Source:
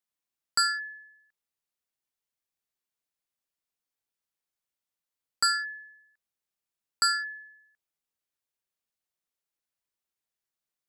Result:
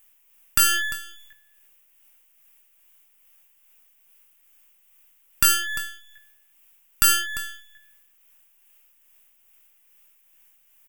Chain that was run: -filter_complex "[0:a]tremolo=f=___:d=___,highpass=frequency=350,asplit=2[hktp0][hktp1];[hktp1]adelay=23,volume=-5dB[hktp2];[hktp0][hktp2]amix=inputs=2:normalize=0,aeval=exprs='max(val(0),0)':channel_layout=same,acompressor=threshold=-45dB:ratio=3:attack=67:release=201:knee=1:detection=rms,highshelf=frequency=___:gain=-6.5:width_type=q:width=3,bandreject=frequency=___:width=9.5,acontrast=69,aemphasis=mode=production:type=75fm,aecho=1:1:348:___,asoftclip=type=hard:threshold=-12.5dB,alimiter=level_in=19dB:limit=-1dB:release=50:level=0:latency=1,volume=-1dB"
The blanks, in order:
2.4, 0.38, 3.4k, 4.2k, 0.075